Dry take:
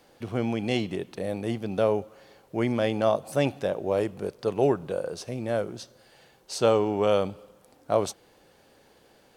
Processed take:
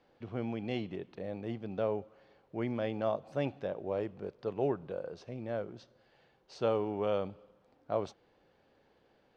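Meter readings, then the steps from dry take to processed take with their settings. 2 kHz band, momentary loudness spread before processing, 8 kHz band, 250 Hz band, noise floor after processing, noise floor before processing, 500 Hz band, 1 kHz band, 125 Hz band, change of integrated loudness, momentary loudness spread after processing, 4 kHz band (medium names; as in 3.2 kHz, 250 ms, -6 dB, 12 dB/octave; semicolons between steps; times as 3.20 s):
-10.5 dB, 11 LU, under -20 dB, -9.0 dB, -69 dBFS, -60 dBFS, -9.0 dB, -9.5 dB, -8.5 dB, -9.0 dB, 11 LU, -13.5 dB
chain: distance through air 200 m; trim -8.5 dB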